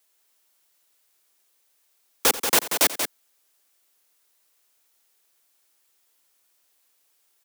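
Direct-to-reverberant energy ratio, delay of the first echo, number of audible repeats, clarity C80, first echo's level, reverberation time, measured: no reverb, 87 ms, 2, no reverb, -16.0 dB, no reverb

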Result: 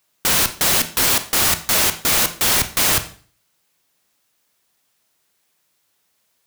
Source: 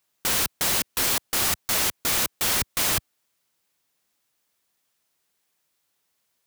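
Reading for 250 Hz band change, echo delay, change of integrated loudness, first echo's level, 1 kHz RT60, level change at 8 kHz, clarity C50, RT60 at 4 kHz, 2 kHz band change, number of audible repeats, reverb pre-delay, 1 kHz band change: +7.0 dB, no echo, +7.0 dB, no echo, 0.45 s, +7.0 dB, 13.0 dB, 0.40 s, +7.0 dB, no echo, 26 ms, +7.0 dB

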